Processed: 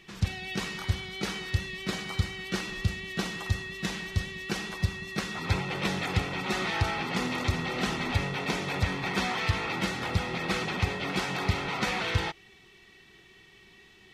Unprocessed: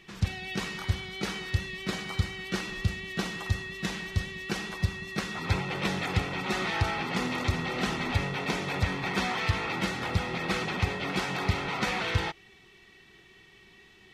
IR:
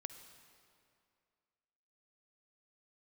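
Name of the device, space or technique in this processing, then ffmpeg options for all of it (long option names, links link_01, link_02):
exciter from parts: -filter_complex "[0:a]asplit=2[link_01][link_02];[link_02]highpass=2200,asoftclip=type=tanh:threshold=-30.5dB,volume=-14dB[link_03];[link_01][link_03]amix=inputs=2:normalize=0"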